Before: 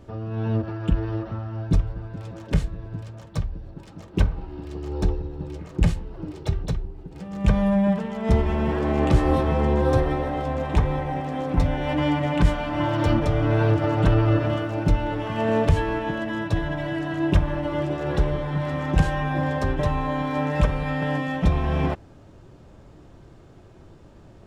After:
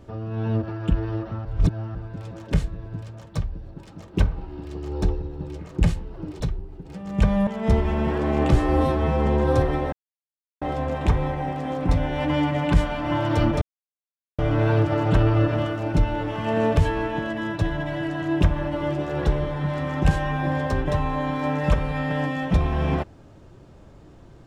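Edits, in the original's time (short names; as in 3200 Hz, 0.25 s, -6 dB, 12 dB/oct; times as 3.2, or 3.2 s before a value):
1.45–1.95 reverse
6.4–6.66 cut
7.73–8.08 cut
9.17–9.64 stretch 1.5×
10.3 insert silence 0.69 s
13.3 insert silence 0.77 s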